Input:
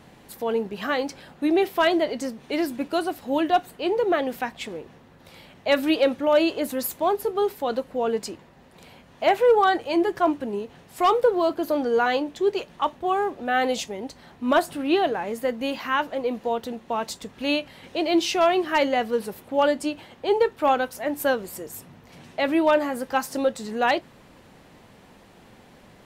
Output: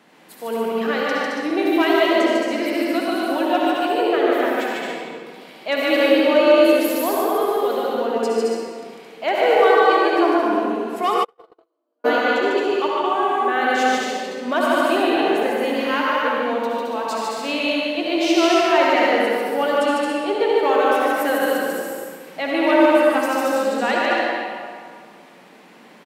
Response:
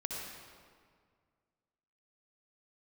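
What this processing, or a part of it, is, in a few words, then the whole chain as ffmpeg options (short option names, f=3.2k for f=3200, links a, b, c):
stadium PA: -filter_complex "[0:a]highpass=f=200:w=0.5412,highpass=f=200:w=1.3066,equalizer=f=2k:t=o:w=1.7:g=4,aecho=1:1:148.7|218.7|279.9:0.794|0.631|0.447[a];[1:a]atrim=start_sample=2205[b];[a][b]afir=irnorm=-1:irlink=0,asplit=3[c][d][e];[c]afade=t=out:st=11.23:d=0.02[f];[d]agate=range=-58dB:threshold=-8dB:ratio=16:detection=peak,afade=t=in:st=11.23:d=0.02,afade=t=out:st=12.04:d=0.02[g];[e]afade=t=in:st=12.04:d=0.02[h];[f][g][h]amix=inputs=3:normalize=0,volume=-1dB"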